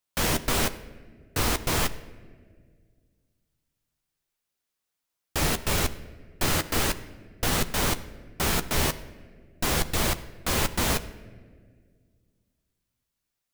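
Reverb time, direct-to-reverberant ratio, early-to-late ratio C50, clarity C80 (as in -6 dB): no single decay rate, 10.0 dB, 15.5 dB, 17.0 dB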